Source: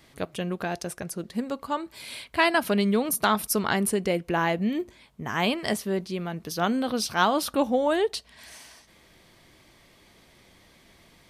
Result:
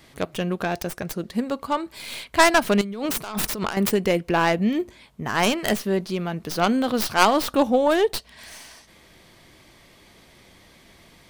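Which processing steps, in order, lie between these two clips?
stylus tracing distortion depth 0.31 ms
0:02.81–0:03.77: compressor whose output falls as the input rises −33 dBFS, ratio −1
level +4.5 dB

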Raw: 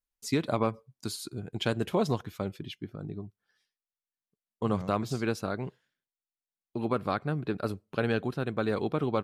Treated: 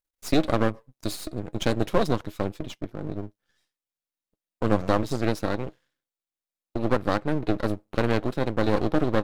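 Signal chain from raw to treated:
hollow resonant body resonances 310/520/3,800 Hz, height 11 dB, ringing for 90 ms
half-wave rectification
level +6 dB

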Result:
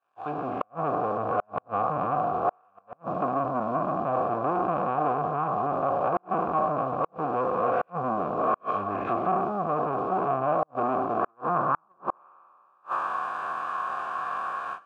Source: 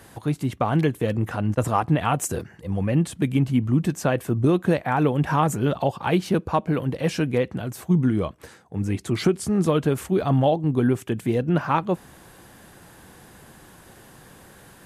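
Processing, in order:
peak hold with a decay on every bin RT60 2.31 s
dynamic equaliser 1,800 Hz, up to +6 dB, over −41 dBFS, Q 2.7
treble cut that deepens with the level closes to 310 Hz, closed at −15 dBFS
automatic gain control gain up to 10 dB
leveller curve on the samples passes 3
flat-topped bell 1,300 Hz +9 dB 1.1 octaves, from 0:11.19 +16 dB
noise gate −18 dBFS, range −19 dB
formant filter a
four-comb reverb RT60 0.75 s, combs from 27 ms, DRR 18.5 dB
gate with flip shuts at −10 dBFS, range −41 dB
low-pass filter 10,000 Hz 24 dB per octave
level −3.5 dB

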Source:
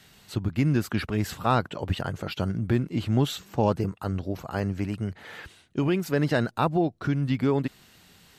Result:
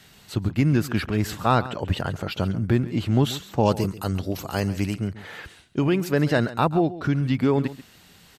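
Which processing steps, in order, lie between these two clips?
0:03.65–0:04.94: drawn EQ curve 1,600 Hz 0 dB, 3,000 Hz +7 dB, 12,000 Hz +12 dB
on a send: single-tap delay 137 ms −16 dB
on the sum: level +3 dB

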